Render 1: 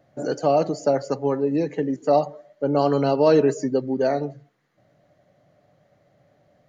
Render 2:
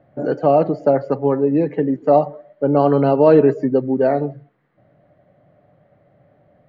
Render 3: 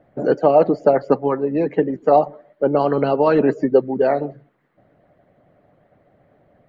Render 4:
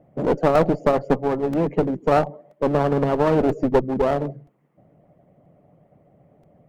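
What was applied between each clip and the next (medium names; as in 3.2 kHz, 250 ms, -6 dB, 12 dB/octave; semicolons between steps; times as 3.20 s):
distance through air 490 m; trim +6.5 dB
harmonic-percussive split harmonic -12 dB; trim +5 dB
fifteen-band graphic EQ 160 Hz +7 dB, 1.6 kHz -12 dB, 4 kHz -12 dB; one-sided clip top -23 dBFS; crackling interface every 0.98 s, samples 128, repeat, from 0.55 s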